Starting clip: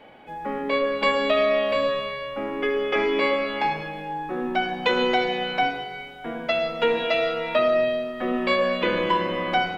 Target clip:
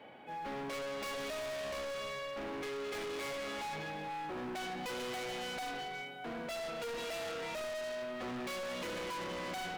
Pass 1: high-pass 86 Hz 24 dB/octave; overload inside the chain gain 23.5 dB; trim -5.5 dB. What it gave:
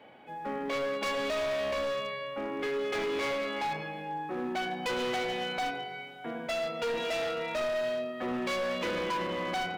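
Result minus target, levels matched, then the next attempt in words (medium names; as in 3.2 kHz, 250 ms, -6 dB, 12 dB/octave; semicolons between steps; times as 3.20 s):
overload inside the chain: distortion -5 dB
high-pass 86 Hz 24 dB/octave; overload inside the chain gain 33.5 dB; trim -5.5 dB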